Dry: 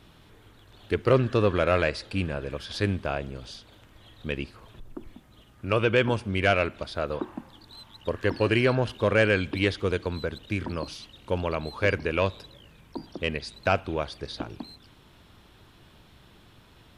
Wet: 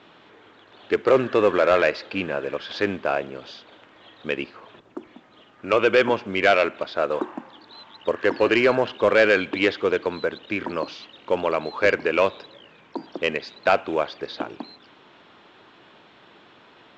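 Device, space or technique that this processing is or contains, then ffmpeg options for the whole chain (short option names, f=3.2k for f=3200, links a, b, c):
telephone: -af "highpass=330,lowpass=3k,asoftclip=type=tanh:threshold=-15.5dB,volume=8dB" -ar 16000 -c:a pcm_mulaw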